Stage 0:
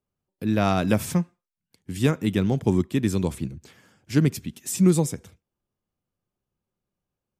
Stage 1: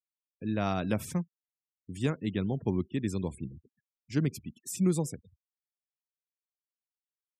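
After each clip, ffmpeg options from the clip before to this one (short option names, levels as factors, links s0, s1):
-af "afftfilt=real='re*gte(hypot(re,im),0.0126)':imag='im*gte(hypot(re,im),0.0126)':win_size=1024:overlap=0.75,volume=0.376"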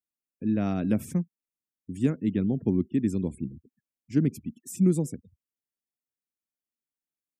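-af "equalizer=f=250:t=o:w=1:g=9,equalizer=f=1000:t=o:w=1:g=-8,equalizer=f=4000:t=o:w=1:g=-9"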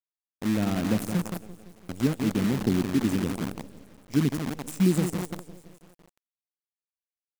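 -filter_complex "[0:a]asplit=2[s0][s1];[s1]aecho=0:1:170|340|510|680|850|1020|1190:0.355|0.202|0.115|0.0657|0.0375|0.0213|0.0122[s2];[s0][s2]amix=inputs=2:normalize=0,acrusher=bits=6:dc=4:mix=0:aa=0.000001"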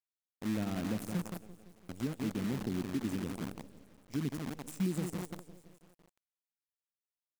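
-af "alimiter=limit=0.15:level=0:latency=1:release=156,volume=0.376"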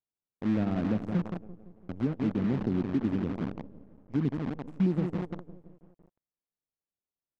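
-af "adynamicsmooth=sensitivity=4:basefreq=730,volume=2.24"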